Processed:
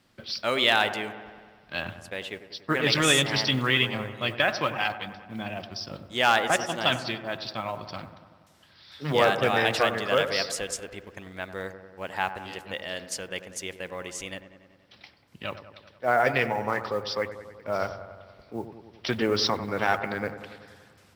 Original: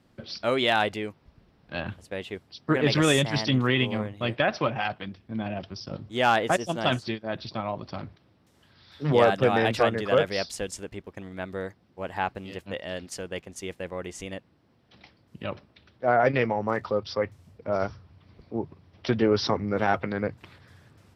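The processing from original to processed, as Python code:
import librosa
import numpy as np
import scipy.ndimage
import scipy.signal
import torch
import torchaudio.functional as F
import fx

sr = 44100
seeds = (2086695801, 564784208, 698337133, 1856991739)

y = fx.tilt_shelf(x, sr, db=-5.5, hz=970.0)
y = fx.mod_noise(y, sr, seeds[0], snr_db=31)
y = fx.echo_wet_lowpass(y, sr, ms=95, feedback_pct=67, hz=1600.0, wet_db=-11)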